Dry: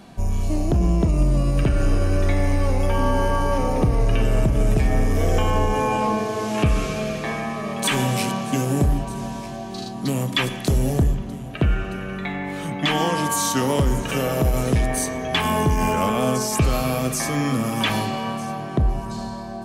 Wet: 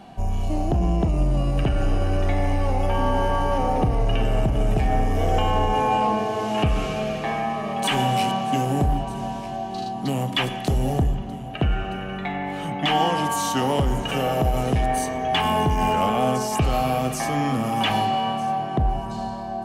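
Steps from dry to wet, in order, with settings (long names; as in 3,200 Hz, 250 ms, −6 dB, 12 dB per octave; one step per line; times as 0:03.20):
bass and treble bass 0 dB, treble −5 dB
hollow resonant body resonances 770/2,900 Hz, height 11 dB, ringing for 25 ms
in parallel at −10 dB: hard clipping −19.5 dBFS, distortion −9 dB
on the sum: level −4 dB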